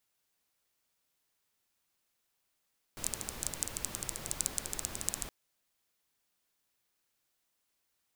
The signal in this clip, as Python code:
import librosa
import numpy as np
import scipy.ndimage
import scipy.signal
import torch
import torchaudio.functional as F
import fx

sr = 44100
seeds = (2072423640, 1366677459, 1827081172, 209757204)

y = fx.rain(sr, seeds[0], length_s=2.32, drops_per_s=13.0, hz=7800.0, bed_db=-4.5)